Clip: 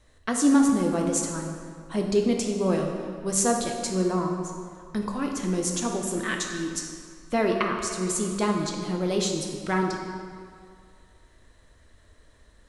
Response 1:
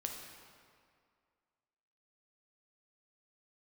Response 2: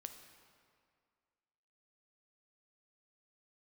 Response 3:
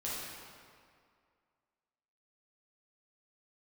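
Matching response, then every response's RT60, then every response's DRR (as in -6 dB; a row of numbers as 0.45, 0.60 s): 1; 2.2, 2.1, 2.2 s; 1.5, 6.0, -8.0 dB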